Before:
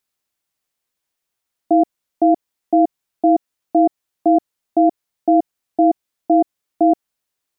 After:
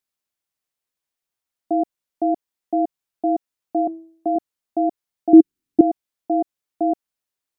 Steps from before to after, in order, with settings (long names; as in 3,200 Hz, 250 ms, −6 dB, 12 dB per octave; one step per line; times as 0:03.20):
0:03.80–0:04.36: hum removal 163.3 Hz, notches 30
0:05.33–0:05.81: low shelf with overshoot 430 Hz +10 dB, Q 3
level −6.5 dB